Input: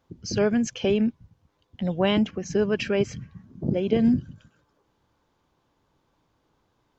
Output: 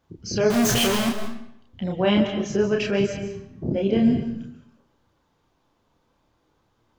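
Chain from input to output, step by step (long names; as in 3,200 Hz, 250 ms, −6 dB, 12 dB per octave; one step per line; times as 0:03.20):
0:00.50–0:01.09: sign of each sample alone
multi-voice chorus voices 2, 0.29 Hz, delay 30 ms, depth 4.5 ms
comb and all-pass reverb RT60 0.75 s, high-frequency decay 0.85×, pre-delay 105 ms, DRR 7.5 dB
level +4.5 dB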